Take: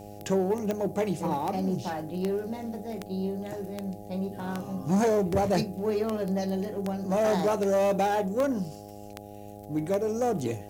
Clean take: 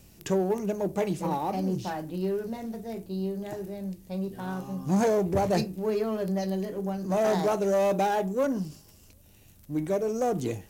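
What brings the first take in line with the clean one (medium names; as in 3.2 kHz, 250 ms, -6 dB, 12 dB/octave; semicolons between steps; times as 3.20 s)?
de-click; de-hum 102.6 Hz, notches 8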